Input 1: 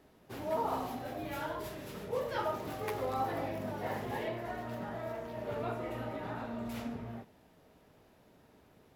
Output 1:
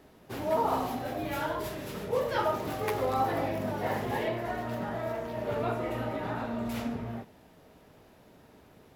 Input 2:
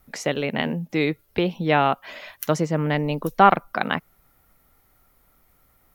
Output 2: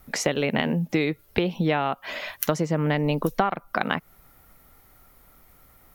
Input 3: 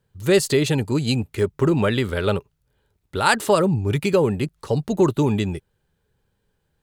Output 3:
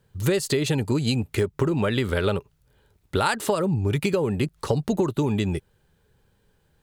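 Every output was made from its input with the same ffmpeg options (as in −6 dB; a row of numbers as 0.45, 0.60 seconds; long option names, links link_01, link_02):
-af "acompressor=threshold=-25dB:ratio=16,volume=6dB"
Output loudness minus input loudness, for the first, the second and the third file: +6.0, −3.0, −3.5 LU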